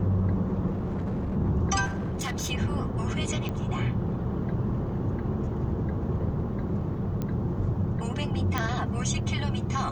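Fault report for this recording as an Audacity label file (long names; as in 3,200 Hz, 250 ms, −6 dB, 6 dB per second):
0.700000	1.370000	clipping −27 dBFS
1.850000	2.520000	clipping −27.5 dBFS
3.490000	3.490000	click −20 dBFS
7.220000	7.220000	click −19 dBFS
8.580000	8.580000	click −13 dBFS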